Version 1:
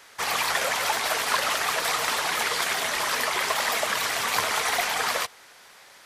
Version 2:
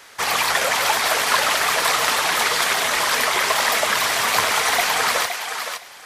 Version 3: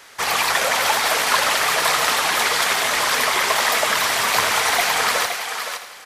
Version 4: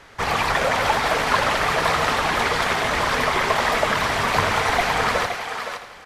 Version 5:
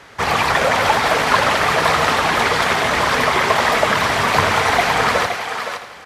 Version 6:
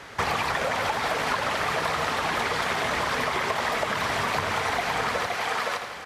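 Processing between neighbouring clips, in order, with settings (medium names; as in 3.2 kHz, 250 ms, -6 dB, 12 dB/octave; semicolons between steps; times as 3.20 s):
thinning echo 516 ms, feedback 16%, high-pass 510 Hz, level -6.5 dB; trim +5.5 dB
feedback delay 82 ms, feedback 57%, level -11 dB
RIAA curve playback
high-pass 69 Hz; trim +4.5 dB
compression 10:1, threshold -23 dBFS, peak gain reduction 14 dB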